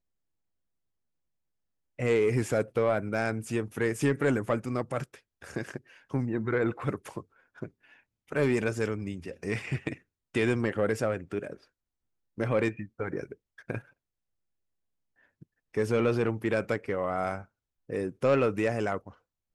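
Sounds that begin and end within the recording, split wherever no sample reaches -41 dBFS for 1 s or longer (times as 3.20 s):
1.99–13.80 s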